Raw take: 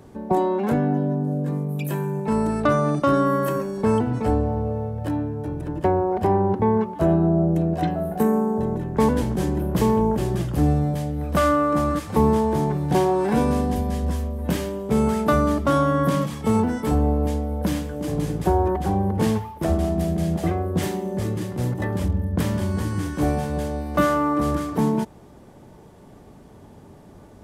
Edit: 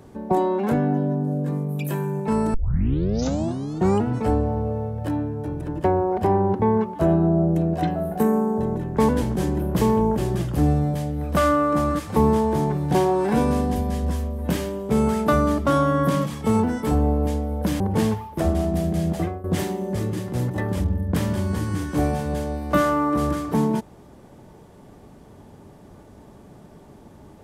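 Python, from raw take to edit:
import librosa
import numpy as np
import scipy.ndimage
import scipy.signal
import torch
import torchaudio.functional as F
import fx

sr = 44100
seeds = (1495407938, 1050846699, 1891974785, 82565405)

y = fx.edit(x, sr, fx.tape_start(start_s=2.54, length_s=1.54),
    fx.cut(start_s=17.8, length_s=1.24),
    fx.fade_out_to(start_s=20.4, length_s=0.28, floor_db=-14.5), tone=tone)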